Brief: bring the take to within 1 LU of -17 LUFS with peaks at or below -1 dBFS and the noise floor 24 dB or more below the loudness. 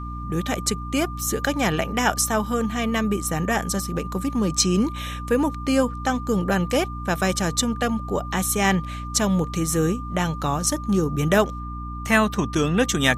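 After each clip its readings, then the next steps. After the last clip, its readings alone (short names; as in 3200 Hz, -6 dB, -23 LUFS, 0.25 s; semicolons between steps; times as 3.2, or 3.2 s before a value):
hum 60 Hz; harmonics up to 300 Hz; hum level -30 dBFS; steady tone 1200 Hz; tone level -35 dBFS; loudness -23.0 LUFS; peak -3.5 dBFS; loudness target -17.0 LUFS
-> notches 60/120/180/240/300 Hz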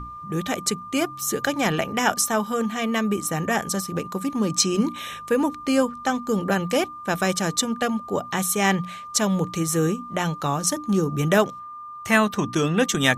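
hum none; steady tone 1200 Hz; tone level -35 dBFS
-> notch 1200 Hz, Q 30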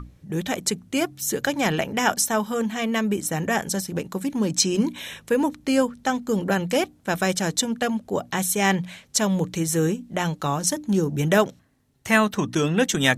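steady tone none; loudness -23.5 LUFS; peak -4.0 dBFS; loudness target -17.0 LUFS
-> gain +6.5 dB; limiter -1 dBFS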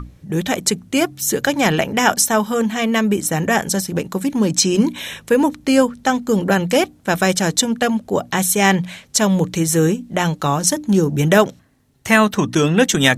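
loudness -17.5 LUFS; peak -1.0 dBFS; noise floor -50 dBFS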